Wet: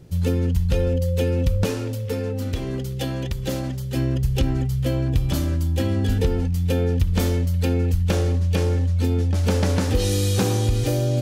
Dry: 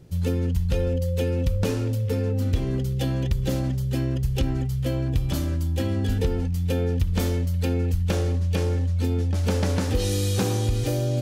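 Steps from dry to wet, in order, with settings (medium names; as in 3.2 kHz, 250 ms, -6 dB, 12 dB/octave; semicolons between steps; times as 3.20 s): 1.65–3.96 s: bass shelf 250 Hz -7.5 dB; trim +3 dB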